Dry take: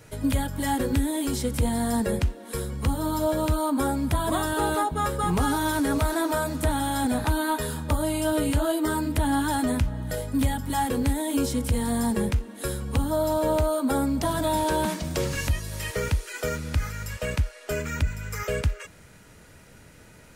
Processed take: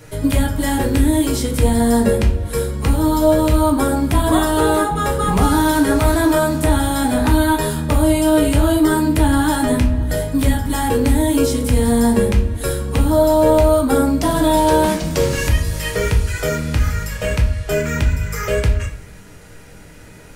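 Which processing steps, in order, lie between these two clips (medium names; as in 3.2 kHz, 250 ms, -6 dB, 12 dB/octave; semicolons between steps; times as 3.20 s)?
simulated room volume 43 m³, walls mixed, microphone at 0.51 m; trim +6 dB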